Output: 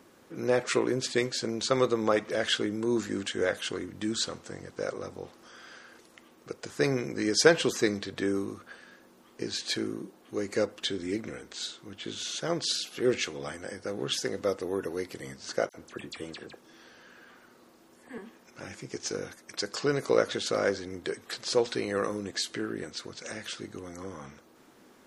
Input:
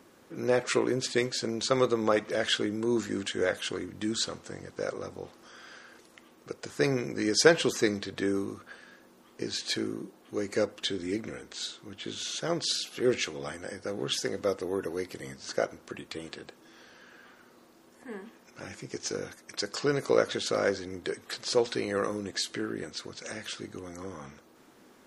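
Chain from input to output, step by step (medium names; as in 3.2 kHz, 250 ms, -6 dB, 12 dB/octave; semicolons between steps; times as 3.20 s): 15.69–18.18 s: phase dispersion lows, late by 52 ms, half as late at 2.4 kHz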